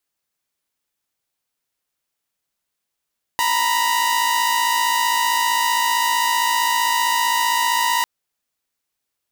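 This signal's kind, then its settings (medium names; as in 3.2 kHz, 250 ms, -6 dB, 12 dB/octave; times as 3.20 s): chord A#5/B5 saw, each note -17 dBFS 4.65 s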